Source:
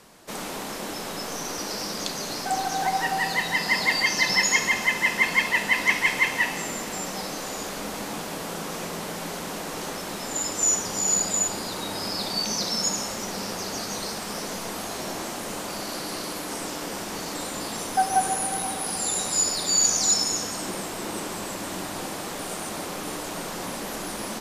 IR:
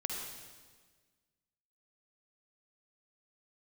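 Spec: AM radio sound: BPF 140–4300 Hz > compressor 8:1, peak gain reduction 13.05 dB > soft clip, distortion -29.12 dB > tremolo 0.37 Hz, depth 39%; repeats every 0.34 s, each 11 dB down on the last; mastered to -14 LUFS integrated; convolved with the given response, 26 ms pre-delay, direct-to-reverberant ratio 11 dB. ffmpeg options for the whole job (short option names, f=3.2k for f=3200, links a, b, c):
-filter_complex "[0:a]aecho=1:1:340|680|1020:0.282|0.0789|0.0221,asplit=2[a][b];[1:a]atrim=start_sample=2205,adelay=26[c];[b][c]afir=irnorm=-1:irlink=0,volume=-13dB[d];[a][d]amix=inputs=2:normalize=0,highpass=140,lowpass=4.3k,acompressor=threshold=-28dB:ratio=8,asoftclip=threshold=-19dB,tremolo=f=0.37:d=0.39,volume=20.5dB"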